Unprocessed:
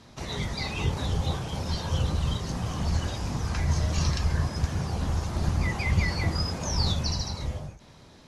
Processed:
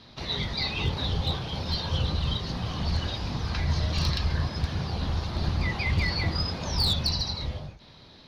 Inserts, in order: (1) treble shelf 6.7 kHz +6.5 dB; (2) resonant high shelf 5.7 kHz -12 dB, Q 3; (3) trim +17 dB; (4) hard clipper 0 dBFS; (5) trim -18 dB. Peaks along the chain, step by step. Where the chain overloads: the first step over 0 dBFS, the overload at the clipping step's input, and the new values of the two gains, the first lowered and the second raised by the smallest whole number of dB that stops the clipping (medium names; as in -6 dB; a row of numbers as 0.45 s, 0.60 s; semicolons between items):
-11.5 dBFS, -9.5 dBFS, +7.5 dBFS, 0.0 dBFS, -18.0 dBFS; step 3, 7.5 dB; step 3 +9 dB, step 5 -10 dB